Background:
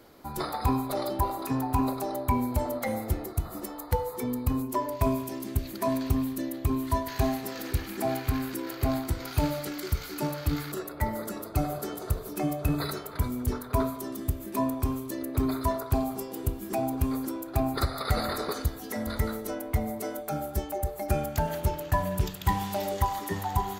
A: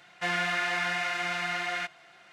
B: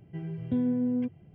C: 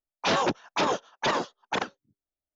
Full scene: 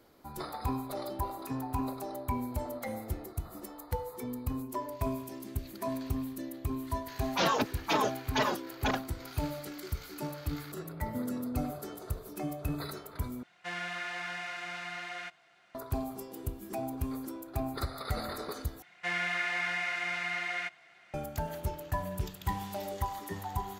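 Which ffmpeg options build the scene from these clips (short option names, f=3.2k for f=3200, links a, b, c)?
-filter_complex "[1:a]asplit=2[a][b];[0:a]volume=-7.5dB[c];[3:a]asplit=2[d][e];[e]adelay=4,afreqshift=-2.5[f];[d][f]amix=inputs=2:normalize=1[g];[b]equalizer=f=2.1k:t=o:w=0.43:g=6.5[h];[c]asplit=3[i][j][k];[i]atrim=end=13.434[l];[a]atrim=end=2.32,asetpts=PTS-STARTPTS,volume=-9dB[m];[j]atrim=start=15.746:end=18.824[n];[h]atrim=end=2.32,asetpts=PTS-STARTPTS,volume=-6.5dB[o];[k]atrim=start=21.136[p];[g]atrim=end=2.55,asetpts=PTS-STARTPTS,volume=-0.5dB,afade=t=in:d=0.004:c=hsin,afade=t=out:st=2.546:d=0.004:c=hsin,adelay=7120[q];[2:a]atrim=end=1.34,asetpts=PTS-STARTPTS,volume=-9dB,afade=t=in:d=0.004:c=hsin,afade=t=out:st=1.336:d=0.004:c=hsin,adelay=10630[r];[l][m]acrossfade=d=0.004:c1=hsin:c2=hsin[s];[s][n]acrossfade=d=0.004:c1=hsin:c2=hsin[t];[t][o]acrossfade=d=0.004:c1=hsin:c2=hsin[u];[u][p]acrossfade=d=0.004:c1=hsin:c2=hsin[v];[v][q][r]amix=inputs=3:normalize=0"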